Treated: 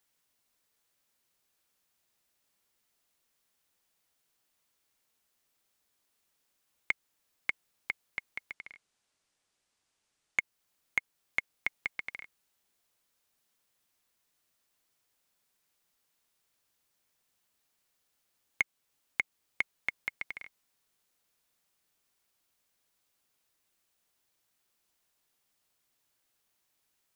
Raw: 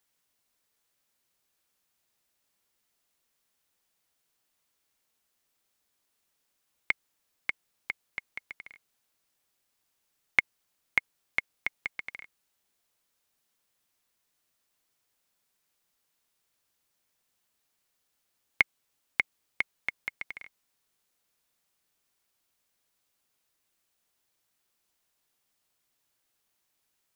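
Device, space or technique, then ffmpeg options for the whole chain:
soft clipper into limiter: -filter_complex "[0:a]asettb=1/sr,asplit=3[s0][s1][s2];[s0]atrim=end=8.534[s3];[s1]atrim=start=8.53:end=10.39,asetpts=PTS-STARTPTS,afade=t=in:d=0.004:c=qsin,afade=t=out:st=1.856:d=0.004:c=qsin,lowpass=f=9300:w=0.5412,lowpass=f=9300:w=1.3066[s4];[s2]atrim=start=10.386[s5];[s3][s4]acrossfade=d=0.004:c1=hsin:c2=qsin[s6];[s6][s5]acrossfade=d=0.004:c1=qsin:c2=hsin,asoftclip=type=tanh:threshold=0.355,alimiter=limit=0.211:level=0:latency=1:release=355"

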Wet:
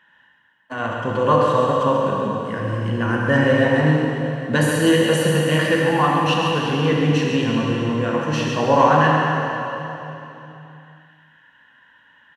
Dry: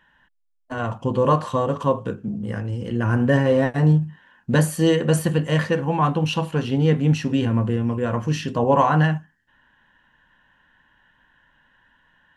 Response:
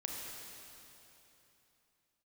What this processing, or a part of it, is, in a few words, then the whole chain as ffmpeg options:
PA in a hall: -filter_complex "[0:a]highpass=110,equalizer=f=2100:t=o:w=2.7:g=6.5,aecho=1:1:135:0.398[s0];[1:a]atrim=start_sample=2205[s1];[s0][s1]afir=irnorm=-1:irlink=0"

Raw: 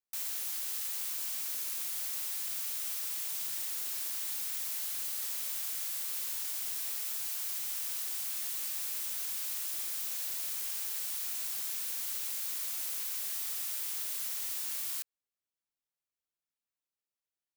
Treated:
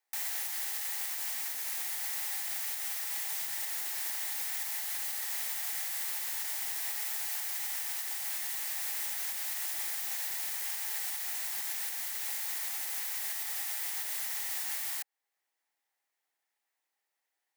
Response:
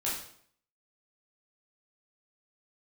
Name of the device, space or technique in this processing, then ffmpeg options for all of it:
laptop speaker: -af "highpass=f=290:w=0.5412,highpass=f=290:w=1.3066,equalizer=f=810:t=o:w=0.39:g=12,equalizer=f=1900:t=o:w=0.45:g=11,alimiter=level_in=2.37:limit=0.0631:level=0:latency=1:release=412,volume=0.422,volume=2.11"

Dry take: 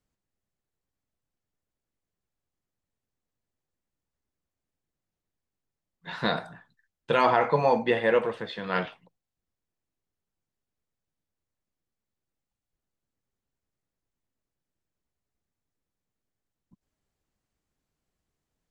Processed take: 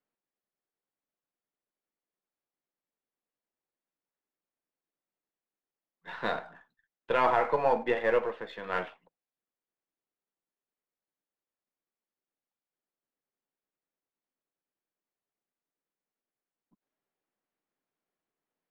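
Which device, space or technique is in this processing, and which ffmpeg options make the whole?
crystal radio: -af "highpass=300,lowpass=2600,aeval=exprs='if(lt(val(0),0),0.708*val(0),val(0))':c=same,volume=0.841"

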